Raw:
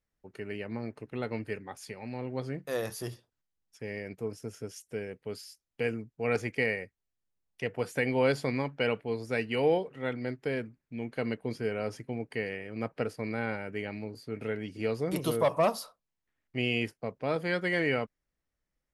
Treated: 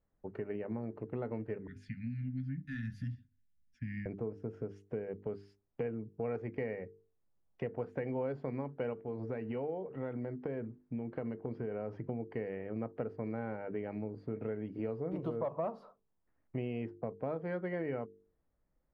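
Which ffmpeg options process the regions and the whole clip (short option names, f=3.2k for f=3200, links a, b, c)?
-filter_complex "[0:a]asettb=1/sr,asplit=3[a][b][c];[a]atrim=end=1.674[d];[b]atrim=start=1.67:end=4.06,asetpts=PTS-STARTPTS,afade=t=in:d=0.004:c=qsin,afade=t=out:st=2.386:d=0.004:c=qsin,asuperstop=centerf=640:order=20:qfactor=0.51,bass=f=250:g=3,treble=f=4k:g=3,aecho=1:1:2.9:0.3,atrim=end_sample=105399[e];[c]atrim=start=4.056[f];[d][e]acrossfade=d=0.004:c1=hsin:c2=qsin[g];[g][f]acrossfade=d=0.004:c1=qsin:c2=hsin,asettb=1/sr,asplit=3[h][i][j];[h]atrim=end=8.934[k];[i]atrim=start=8.93:end=11.99,asetpts=PTS-STARTPTS,afade=t=in:d=0.004:c=qsin,afade=t=out:st=3.056:d=0.004:c=qsin,lowpass=5.8k,acompressor=threshold=-34dB:ratio=2.5:attack=3.2:release=140:knee=1:detection=peak[l];[j]atrim=start=11.986[m];[k][l]acrossfade=d=0.004:c1=hsin:c2=qsin[n];[n][m]acrossfade=d=0.004:c1=qsin:c2=hsin,lowpass=1k,bandreject=f=50:t=h:w=6,bandreject=f=100:t=h:w=6,bandreject=f=150:t=h:w=6,bandreject=f=200:t=h:w=6,bandreject=f=250:t=h:w=6,bandreject=f=300:t=h:w=6,bandreject=f=350:t=h:w=6,bandreject=f=400:t=h:w=6,bandreject=f=450:t=h:w=6,acompressor=threshold=-44dB:ratio=4,volume=7.5dB"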